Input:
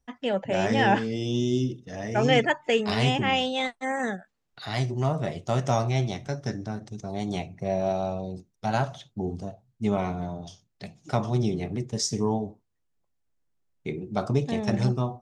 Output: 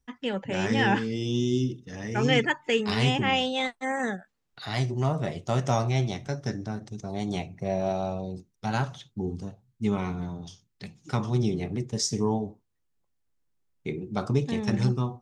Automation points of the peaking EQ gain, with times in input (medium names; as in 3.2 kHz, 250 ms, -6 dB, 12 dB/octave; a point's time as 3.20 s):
peaking EQ 650 Hz 0.4 oct
2.69 s -13.5 dB
3.29 s -2.5 dB
8.22 s -2.5 dB
9.08 s -14.5 dB
11.12 s -14.5 dB
11.59 s -3.5 dB
13.92 s -3.5 dB
14.56 s -12 dB